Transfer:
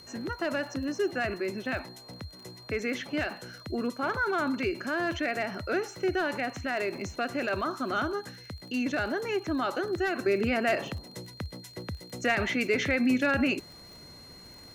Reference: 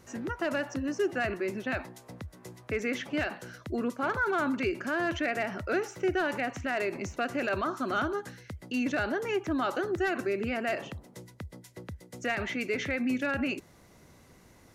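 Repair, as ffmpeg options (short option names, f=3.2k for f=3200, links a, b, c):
-af "adeclick=t=4,bandreject=f=4.2k:w=30,agate=range=-21dB:threshold=-41dB,asetnsamples=n=441:p=0,asendcmd='10.26 volume volume -4.5dB',volume=0dB"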